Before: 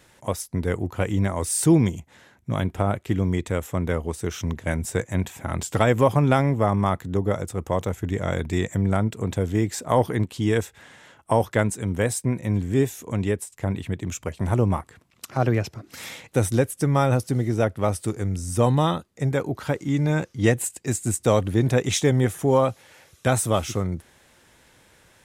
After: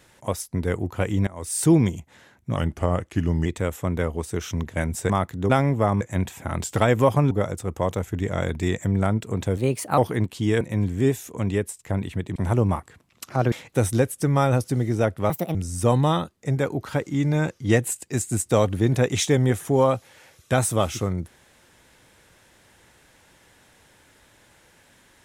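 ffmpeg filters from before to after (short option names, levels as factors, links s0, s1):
-filter_complex "[0:a]asplit=15[s0][s1][s2][s3][s4][s5][s6][s7][s8][s9][s10][s11][s12][s13][s14];[s0]atrim=end=1.27,asetpts=PTS-STARTPTS,afade=t=out:st=1.266:d=0.004:c=hsin:silence=0.1[s15];[s1]atrim=start=1.27:end=2.564,asetpts=PTS-STARTPTS,afade=t=in:d=0.39:silence=0.1[s16];[s2]atrim=start=2.56:end=3.36,asetpts=PTS-STARTPTS,asetrate=39249,aresample=44100,atrim=end_sample=39640,asetpts=PTS-STARTPTS[s17];[s3]atrim=start=3.356:end=5.002[s18];[s4]atrim=start=6.808:end=7.212[s19];[s5]atrim=start=6.298:end=6.812[s20];[s6]atrim=start=4.998:end=6.302[s21];[s7]atrim=start=7.208:end=9.474[s22];[s8]atrim=start=9.47:end=9.97,asetpts=PTS-STARTPTS,asetrate=53802,aresample=44100[s23];[s9]atrim=start=9.966:end=10.602[s24];[s10]atrim=start=12.338:end=14.092[s25];[s11]atrim=start=14.368:end=15.532[s26];[s12]atrim=start=16.108:end=17.894[s27];[s13]atrim=start=17.89:end=18.29,asetpts=PTS-STARTPTS,asetrate=70560,aresample=44100[s28];[s14]atrim=start=18.286[s29];[s15][s16]concat=n=2:v=0:a=1[s30];[s30][s17]acrossfade=d=0.004:c1=hsin:c2=hsin[s31];[s31][s18]acrossfade=d=0.004:c1=hsin:c2=hsin[s32];[s32][s19]acrossfade=d=0.004:c1=hsin:c2=hsin[s33];[s33][s20]acrossfade=d=0.004:c1=hsin:c2=hsin[s34];[s34][s21]acrossfade=d=0.004:c1=hsin:c2=hsin[s35];[s35][s22]acrossfade=d=0.004:c1=hsin:c2=hsin[s36];[s36][s23]acrossfade=d=0.004:c1=hsin:c2=hsin[s37];[s37][s24]acrossfade=d=0.004:c1=hsin:c2=hsin[s38];[s38][s25]acrossfade=d=0.004:c1=hsin:c2=hsin[s39];[s39][s26]acrossfade=d=0.004:c1=hsin:c2=hsin[s40];[s40][s27]acrossfade=d=0.004:c1=hsin:c2=hsin[s41];[s41][s28]acrossfade=d=0.004:c1=hsin:c2=hsin[s42];[s42][s29]acrossfade=d=0.004:c1=hsin:c2=hsin"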